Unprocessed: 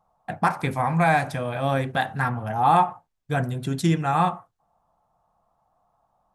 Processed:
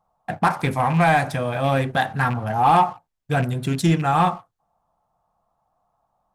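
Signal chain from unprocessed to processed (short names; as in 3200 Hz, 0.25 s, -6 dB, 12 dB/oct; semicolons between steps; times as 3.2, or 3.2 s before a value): rattling part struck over -24 dBFS, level -29 dBFS; sample leveller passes 1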